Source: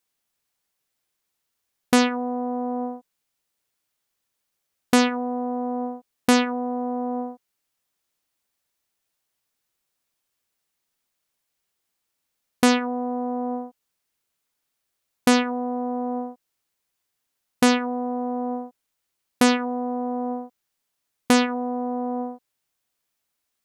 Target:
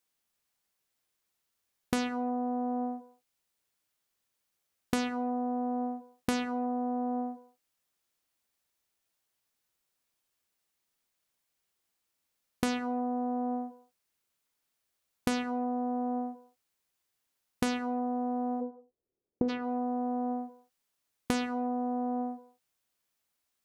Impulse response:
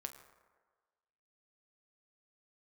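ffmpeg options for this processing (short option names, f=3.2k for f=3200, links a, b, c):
-filter_complex "[0:a]asplit=3[a][b][c];[a]afade=t=out:st=18.6:d=0.02[d];[b]lowpass=f=420:t=q:w=3.5,afade=t=in:st=18.6:d=0.02,afade=t=out:st=19.48:d=0.02[e];[c]afade=t=in:st=19.48:d=0.02[f];[d][e][f]amix=inputs=3:normalize=0,acompressor=threshold=-25dB:ratio=6,asplit=2[g][h];[1:a]atrim=start_sample=2205,afade=t=out:st=0.26:d=0.01,atrim=end_sample=11907[i];[h][i]afir=irnorm=-1:irlink=0,volume=2dB[j];[g][j]amix=inputs=2:normalize=0,volume=-8dB"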